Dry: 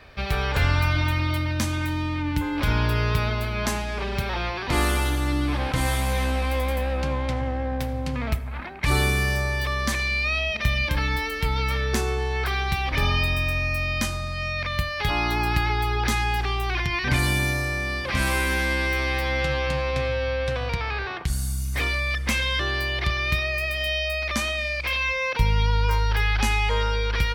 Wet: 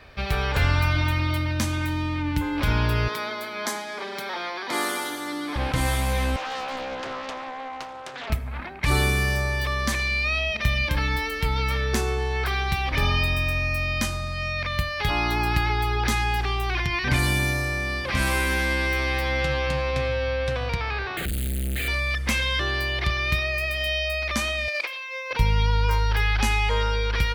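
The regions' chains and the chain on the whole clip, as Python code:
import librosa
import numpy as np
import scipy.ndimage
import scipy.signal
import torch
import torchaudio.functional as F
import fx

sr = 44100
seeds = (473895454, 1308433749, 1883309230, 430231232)

y = fx.chain(x, sr, fx.highpass(hz=220.0, slope=24),
    fx.low_shelf(hz=440.0, db=-6.0),
    fx.notch(hz=2700.0, q=5.0), at=(3.08, 5.56))
y = fx.chain(y, sr, fx.bandpass_edges(low_hz=540.0, high_hz=4800.0),
    fx.doppler_dist(depth_ms=0.59), at=(6.36, 8.3))
y = fx.chain(y, sr, fx.clip_1bit(),
    fx.fixed_phaser(hz=2400.0, stages=4), at=(21.17, 21.88))
y = fx.chain(y, sr, fx.highpass(hz=350.0, slope=24),
    fx.over_compress(threshold_db=-30.0, ratio=-0.5),
    fx.quant_companded(bits=8), at=(24.68, 25.31))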